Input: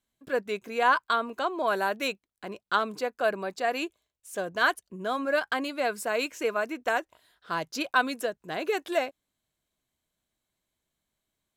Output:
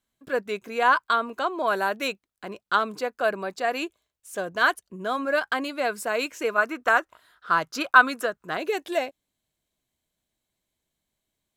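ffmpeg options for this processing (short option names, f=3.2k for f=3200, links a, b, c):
-af "asetnsamples=n=441:p=0,asendcmd='6.58 equalizer g 12.5;8.57 equalizer g -4.5',equalizer=f=1.3k:w=2.1:g=2.5,volume=1.5dB"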